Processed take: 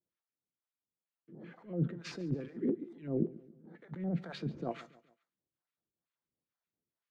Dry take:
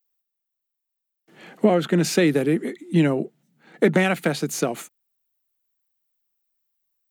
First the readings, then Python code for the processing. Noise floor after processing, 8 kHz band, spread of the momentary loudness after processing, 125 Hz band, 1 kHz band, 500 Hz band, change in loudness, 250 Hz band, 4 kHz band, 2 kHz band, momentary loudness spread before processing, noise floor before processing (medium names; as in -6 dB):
under -85 dBFS, under -25 dB, 18 LU, -12.5 dB, -20.0 dB, -19.0 dB, -16.0 dB, -15.0 dB, -20.5 dB, -25.5 dB, 9 LU, -82 dBFS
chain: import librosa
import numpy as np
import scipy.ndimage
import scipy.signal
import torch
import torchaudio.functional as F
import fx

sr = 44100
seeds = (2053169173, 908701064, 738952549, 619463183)

y = scipy.signal.medfilt(x, 5)
y = scipy.signal.sosfilt(scipy.signal.butter(2, 120.0, 'highpass', fs=sr, output='sos'), y)
y = fx.low_shelf(y, sr, hz=280.0, db=9.0)
y = fx.over_compress(y, sr, threshold_db=-24.0, ratio=-1.0)
y = fx.harmonic_tremolo(y, sr, hz=2.2, depth_pct=100, crossover_hz=660.0)
y = fx.filter_lfo_notch(y, sr, shape='square', hz=5.2, low_hz=760.0, high_hz=2600.0, q=0.96)
y = fx.spacing_loss(y, sr, db_at_10k=29)
y = fx.comb_fb(y, sr, f0_hz=170.0, decay_s=0.23, harmonics='all', damping=0.0, mix_pct=50)
y = fx.echo_feedback(y, sr, ms=140, feedback_pct=43, wet_db=-19.0)
y = y * librosa.db_to_amplitude(-2.5)